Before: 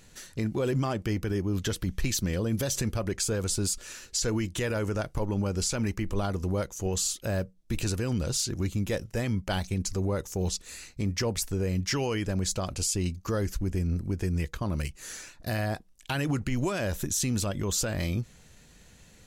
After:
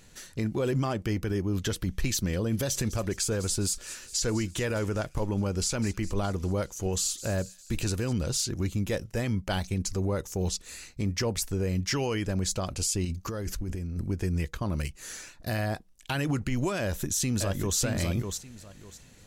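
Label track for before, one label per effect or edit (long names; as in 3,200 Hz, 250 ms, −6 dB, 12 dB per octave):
2.310000	8.130000	delay with a high-pass on its return 205 ms, feedback 57%, high-pass 3,700 Hz, level −13.5 dB
13.050000	14.050000	compressor whose output falls as the input rises −32 dBFS
16.800000	17.770000	delay throw 600 ms, feedback 20%, level −5 dB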